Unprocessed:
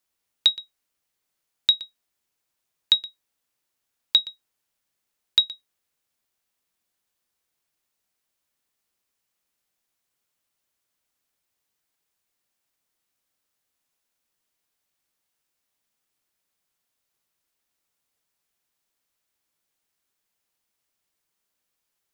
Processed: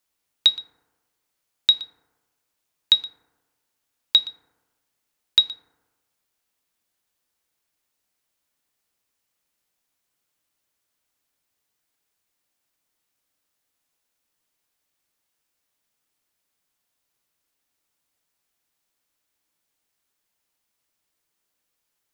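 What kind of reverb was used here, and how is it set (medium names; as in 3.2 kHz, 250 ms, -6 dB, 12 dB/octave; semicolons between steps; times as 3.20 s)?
FDN reverb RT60 1.3 s, low-frequency decay 0.95×, high-frequency decay 0.3×, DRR 11 dB; trim +1.5 dB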